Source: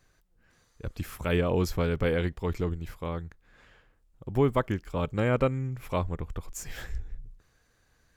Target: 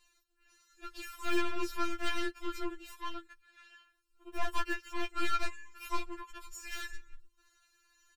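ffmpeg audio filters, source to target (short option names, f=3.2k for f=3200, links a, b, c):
-filter_complex "[0:a]tiltshelf=f=790:g=-9.5,deesser=0.75,highshelf=f=7.6k:g=-7,asplit=2[a][b];[b]aeval=exprs='sgn(val(0))*max(abs(val(0))-0.00891,0)':c=same,volume=-11dB[c];[a][c]amix=inputs=2:normalize=0,aecho=1:1:5.1:0.53,aeval=exprs='(tanh(22.4*val(0)+0.75)-tanh(0.75))/22.4':c=same,afftfilt=real='re*4*eq(mod(b,16),0)':imag='im*4*eq(mod(b,16),0)':win_size=2048:overlap=0.75,volume=2dB"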